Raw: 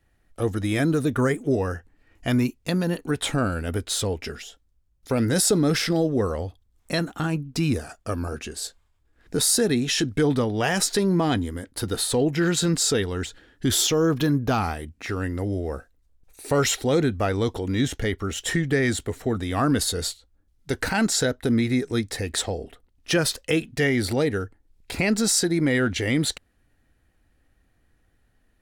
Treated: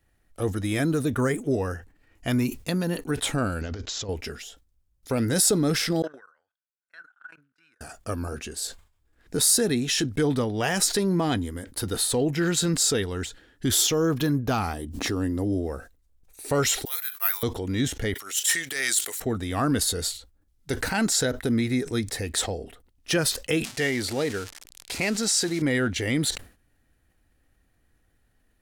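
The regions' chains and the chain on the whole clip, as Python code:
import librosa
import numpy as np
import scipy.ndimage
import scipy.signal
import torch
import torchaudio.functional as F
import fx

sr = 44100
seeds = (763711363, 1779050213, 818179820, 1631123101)

y = fx.chain(x, sr, fx.over_compress(threshold_db=-31.0, ratio=-1.0),
    fx.resample_bad(factor=3, down='none', up='filtered'), at=(3.61, 4.09))
y = fx.chain(y, sr, fx.level_steps(step_db=24),
    fx.bandpass_q(hz=1500.0, q=18.0),
    fx.tilt_eq(slope=2.0), at=(6.02, 7.81))
y = fx.chain(y, sr, fx.band_shelf(hz=1900.0, db=-8.5, octaves=1.1),
    fx.small_body(hz=(280.0, 1700.0), ring_ms=25, db=7),
    fx.pre_swell(db_per_s=48.0), at=(14.73, 15.67))
y = fx.chain(y, sr, fx.highpass(hz=1100.0, slope=24),
    fx.resample_bad(factor=3, down='none', up='zero_stuff'),
    fx.band_widen(depth_pct=100), at=(16.85, 17.43))
y = fx.chain(y, sr, fx.highpass(hz=560.0, slope=6),
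    fx.tilt_eq(slope=4.5),
    fx.transient(attack_db=-11, sustain_db=1), at=(18.14, 19.2))
y = fx.chain(y, sr, fx.crossing_spikes(level_db=-21.5),
    fx.lowpass(hz=6600.0, slope=12),
    fx.low_shelf(hz=230.0, db=-7.0), at=(23.64, 25.62))
y = fx.high_shelf(y, sr, hz=6900.0, db=6.0)
y = fx.sustainer(y, sr, db_per_s=150.0)
y = y * 10.0 ** (-2.5 / 20.0)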